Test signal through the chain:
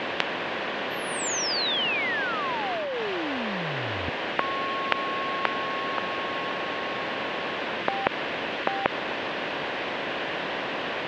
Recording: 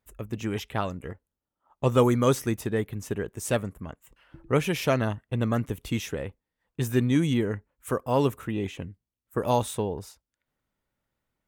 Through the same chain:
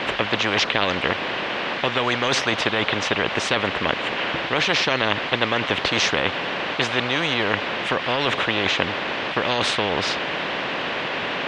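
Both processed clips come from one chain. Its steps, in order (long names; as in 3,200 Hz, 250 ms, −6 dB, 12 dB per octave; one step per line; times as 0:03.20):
reversed playback
downward compressor 6 to 1, threshold −32 dBFS
reversed playback
background noise pink −59 dBFS
loudspeaker in its box 450–2,800 Hz, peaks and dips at 550 Hz +8 dB, 860 Hz −6 dB, 1,300 Hz −9 dB, 2,200 Hz −5 dB
boost into a limiter +29 dB
every bin compressed towards the loudest bin 4 to 1
level −1 dB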